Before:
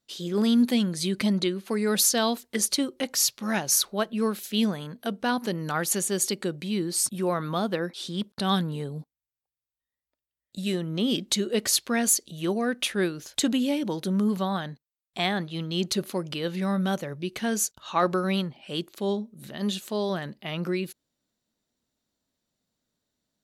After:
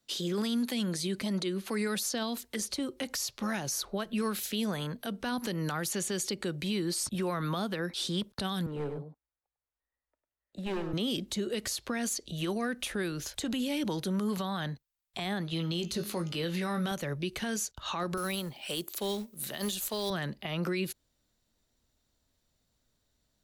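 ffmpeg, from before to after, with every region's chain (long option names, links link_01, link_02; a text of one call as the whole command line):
ffmpeg -i in.wav -filter_complex "[0:a]asettb=1/sr,asplit=3[link_01][link_02][link_03];[link_01]atrim=end=8.664[link_04];[link_02]atrim=start=8.66:end=10.93,asetpts=PTS-STARTPTS,afade=type=in:duration=0.004:curve=qsin,afade=type=out:start_time=2.266:duration=0.004:curve=qsin,acrossover=split=240 2000:gain=0.251 1 0.0891[link_05][link_06][link_07];[link_05][link_06][link_07]amix=inputs=3:normalize=0,asoftclip=type=hard:threshold=-32.5dB,aecho=1:1:101:0.398,atrim=end_sample=100107[link_08];[link_03]atrim=start=10.926[link_09];[link_04][link_08]acrossfade=duration=0.004:curve1=hsin:curve2=qsin[link_10];[link_10][link_09]acrossfade=duration=0.004:curve1=qsin:curve2=hsin,asettb=1/sr,asplit=3[link_11][link_12][link_13];[link_11]atrim=end=15.504[link_14];[link_12]atrim=start=15.5:end=16.91,asetpts=PTS-STARTPTS,afade=type=in:duration=0.004:curve=qsin,afade=type=out:start_time=1.406:duration=0.004:curve=qsin,asplit=2[link_15][link_16];[link_16]adelay=18,volume=-7dB[link_17];[link_15][link_17]amix=inputs=2:normalize=0,atrim=end_sample=62181,bandreject=frequency=206.2:width_type=h:width=4,bandreject=frequency=412.4:width_type=h:width=4,bandreject=frequency=618.6:width_type=h:width=4,bandreject=frequency=824.8:width_type=h:width=4,bandreject=frequency=1031:width_type=h:width=4,bandreject=frequency=1237.2:width_type=h:width=4,bandreject=frequency=1443.4:width_type=h:width=4,bandreject=frequency=1649.6:width_type=h:width=4,bandreject=frequency=1855.8:width_type=h:width=4,bandreject=frequency=2062:width_type=h:width=4,bandreject=frequency=2268.2:width_type=h:width=4,bandreject=frequency=2474.4:width_type=h:width=4,bandreject=frequency=2680.6:width_type=h:width=4,bandreject=frequency=2886.8:width_type=h:width=4,bandreject=frequency=3093:width_type=h:width=4,bandreject=frequency=3299.2:width_type=h:width=4,bandreject=frequency=3505.4:width_type=h:width=4,bandreject=frequency=3711.6:width_type=h:width=4,bandreject=frequency=3917.8:width_type=h:width=4,bandreject=frequency=4124:width_type=h:width=4,bandreject=frequency=4330.2:width_type=h:width=4,bandreject=frequency=4536.4:width_type=h:width=4,bandreject=frequency=4742.6:width_type=h:width=4,bandreject=frequency=4948.8:width_type=h:width=4,bandreject=frequency=5155:width_type=h:width=4,bandreject=frequency=5361.2:width_type=h:width=4,bandreject=frequency=5567.4:width_type=h:width=4,bandreject=frequency=5773.6:width_type=h:width=4,bandreject=frequency=5979.8:width_type=h:width=4,bandreject=frequency=6186:width_type=h:width=4,bandreject=frequency=6392.2:width_type=h:width=4,bandreject=frequency=6598.4:width_type=h:width=4,bandreject=frequency=6804.6:width_type=h:width=4,bandreject=frequency=7010.8:width_type=h:width=4[link_18];[link_13]atrim=start=16.906[link_19];[link_14][link_18]acrossfade=duration=0.004:curve1=hsin:curve2=qsin[link_20];[link_20][link_19]acrossfade=duration=0.004:curve1=qsin:curve2=hsin,asettb=1/sr,asplit=3[link_21][link_22][link_23];[link_21]atrim=end=18.174[link_24];[link_22]atrim=start=18.17:end=20.1,asetpts=PTS-STARTPTS,afade=type=in:duration=0.004:curve=qsin,afade=type=out:start_time=1.926:duration=0.004:curve=qsin,aemphasis=mode=production:type=bsi,acrusher=bits=5:mode=log:mix=0:aa=0.000001[link_25];[link_23]atrim=start=20.096[link_26];[link_24][link_25]acrossfade=duration=0.004:curve1=hsin:curve2=qsin[link_27];[link_27][link_26]acrossfade=duration=0.004:curve1=qsin:curve2=hsin,asubboost=boost=5:cutoff=83,acrossover=split=170|350|1100|6000[link_28][link_29][link_30][link_31][link_32];[link_28]acompressor=threshold=-44dB:ratio=4[link_33];[link_29]acompressor=threshold=-36dB:ratio=4[link_34];[link_30]acompressor=threshold=-40dB:ratio=4[link_35];[link_31]acompressor=threshold=-36dB:ratio=4[link_36];[link_32]acompressor=threshold=-38dB:ratio=4[link_37];[link_33][link_34][link_35][link_36][link_37]amix=inputs=5:normalize=0,alimiter=level_in=4dB:limit=-24dB:level=0:latency=1:release=79,volume=-4dB,volume=4dB" out.wav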